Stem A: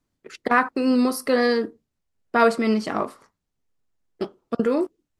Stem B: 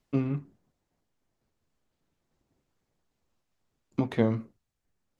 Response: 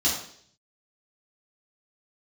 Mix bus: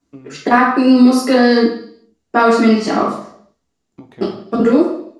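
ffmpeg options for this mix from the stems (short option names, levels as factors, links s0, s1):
-filter_complex "[0:a]lowpass=f=10000:w=0.5412,lowpass=f=10000:w=1.3066,volume=1.12,asplit=2[s0][s1];[s1]volume=0.631[s2];[1:a]acompressor=threshold=0.0398:ratio=4,volume=0.447,asplit=2[s3][s4];[s4]volume=0.112[s5];[2:a]atrim=start_sample=2205[s6];[s2][s5]amix=inputs=2:normalize=0[s7];[s7][s6]afir=irnorm=-1:irlink=0[s8];[s0][s3][s8]amix=inputs=3:normalize=0,alimiter=limit=0.841:level=0:latency=1:release=146"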